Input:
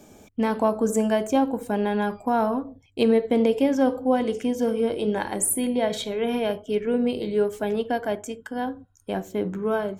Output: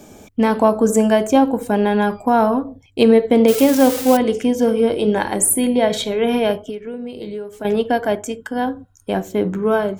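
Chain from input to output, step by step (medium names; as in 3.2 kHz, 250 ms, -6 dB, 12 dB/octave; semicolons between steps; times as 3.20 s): 3.48–4.17 s: zero-crossing glitches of -18.5 dBFS; 6.55–7.65 s: compression 16:1, threshold -33 dBFS, peak gain reduction 16.5 dB; trim +7.5 dB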